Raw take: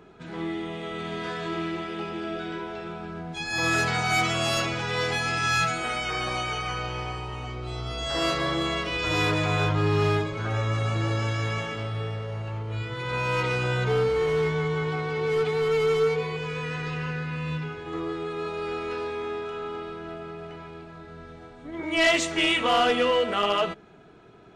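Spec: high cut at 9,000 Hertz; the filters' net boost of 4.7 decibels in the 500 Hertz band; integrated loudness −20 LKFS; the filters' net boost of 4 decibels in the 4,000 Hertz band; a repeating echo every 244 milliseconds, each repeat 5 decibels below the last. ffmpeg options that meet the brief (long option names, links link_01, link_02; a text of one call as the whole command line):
ffmpeg -i in.wav -af "lowpass=9000,equalizer=frequency=500:width_type=o:gain=5.5,equalizer=frequency=4000:width_type=o:gain=5.5,aecho=1:1:244|488|732|976|1220|1464|1708:0.562|0.315|0.176|0.0988|0.0553|0.031|0.0173,volume=2dB" out.wav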